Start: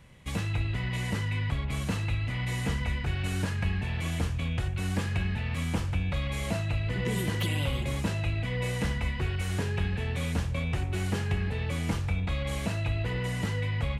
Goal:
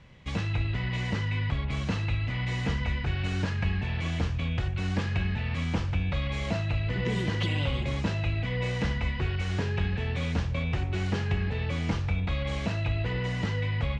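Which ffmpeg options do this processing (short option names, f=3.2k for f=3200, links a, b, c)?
-af "lowpass=f=5.9k:w=0.5412,lowpass=f=5.9k:w=1.3066,volume=1dB"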